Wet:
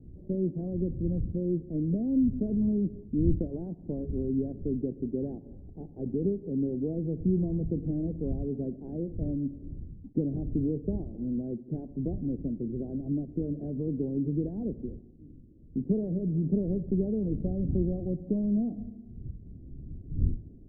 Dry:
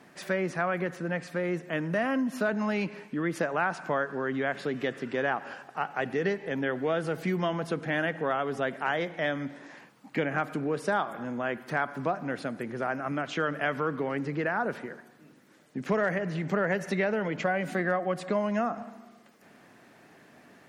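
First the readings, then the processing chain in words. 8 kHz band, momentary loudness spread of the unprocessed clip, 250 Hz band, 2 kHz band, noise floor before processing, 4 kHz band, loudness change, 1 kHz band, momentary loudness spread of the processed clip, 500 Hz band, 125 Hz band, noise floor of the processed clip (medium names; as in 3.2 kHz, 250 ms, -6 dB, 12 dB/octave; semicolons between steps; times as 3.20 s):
under -30 dB, 6 LU, +4.0 dB, under -40 dB, -57 dBFS, under -40 dB, -1.0 dB, under -25 dB, 12 LU, -5.5 dB, +5.5 dB, -50 dBFS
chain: block-companded coder 3-bit; wind noise 100 Hz -43 dBFS; inverse Chebyshev low-pass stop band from 1.2 kHz, stop band 60 dB; trim +4.5 dB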